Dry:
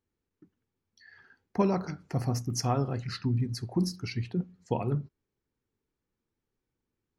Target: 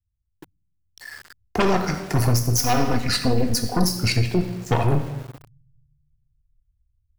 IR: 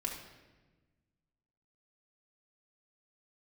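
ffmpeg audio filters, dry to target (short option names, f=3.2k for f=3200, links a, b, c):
-filter_complex "[0:a]asubboost=boost=5.5:cutoff=89,aeval=exprs='0.188*(cos(1*acos(clip(val(0)/0.188,-1,1)))-cos(1*PI/2))+0.0531*(cos(2*acos(clip(val(0)/0.188,-1,1)))-cos(2*PI/2))+0.0668*(cos(5*acos(clip(val(0)/0.188,-1,1)))-cos(5*PI/2))+0.0531*(cos(8*acos(clip(val(0)/0.188,-1,1)))-cos(8*PI/2))':c=same,asplit=2[a][b];[b]aemphasis=mode=production:type=bsi[c];[1:a]atrim=start_sample=2205[d];[c][d]afir=irnorm=-1:irlink=0,volume=-1dB[e];[a][e]amix=inputs=2:normalize=0,alimiter=limit=-11.5dB:level=0:latency=1:release=249,asettb=1/sr,asplit=3[f][g][h];[f]atrim=end=2.584[i];[g]atrim=start=2.58:end=3.85,asetpts=PTS-STARTPTS,afade=t=in:d=0.004:c=qsin,afade=t=out:st=1.266:d=0.004:c=qsin,aecho=1:1:4.1:0.59,atrim=end_sample=56007[j];[h]atrim=start=3.846[k];[i][j]acrossfade=d=0.004:c1=hsin:c2=qsin[l];[l][k]acrossfade=d=0.004:c1=qsin:c2=hsin,acrossover=split=110[m][n];[n]aeval=exprs='val(0)*gte(abs(val(0)),0.01)':c=same[o];[m][o]amix=inputs=2:normalize=0,volume=2dB"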